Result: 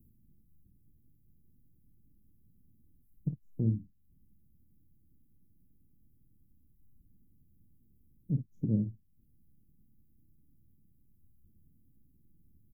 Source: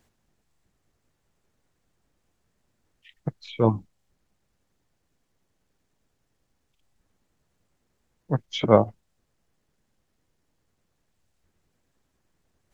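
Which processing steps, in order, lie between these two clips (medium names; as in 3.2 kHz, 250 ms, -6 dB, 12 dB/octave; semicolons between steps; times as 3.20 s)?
inverse Chebyshev band-stop 970–4500 Hz, stop band 70 dB; compression 2:1, threshold -47 dBFS, peak gain reduction 15.5 dB; on a send: early reflections 28 ms -13 dB, 53 ms -10.5 dB; on the sum: trim +8 dB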